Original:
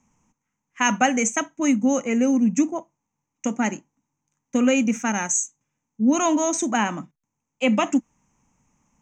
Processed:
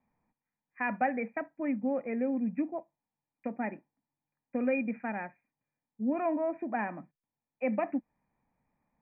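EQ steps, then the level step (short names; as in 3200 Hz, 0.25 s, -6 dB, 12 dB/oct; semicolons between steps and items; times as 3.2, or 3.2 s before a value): dynamic EQ 1300 Hz, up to -3 dB, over -34 dBFS, Q 0.74; rippled Chebyshev low-pass 2500 Hz, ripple 9 dB; -4.5 dB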